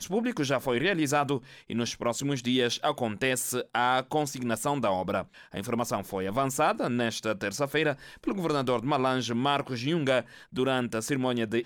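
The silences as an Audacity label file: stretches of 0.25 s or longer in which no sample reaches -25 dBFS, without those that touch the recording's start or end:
1.370000	1.700000	silence
5.200000	5.570000	silence
7.920000	8.270000	silence
10.200000	10.580000	silence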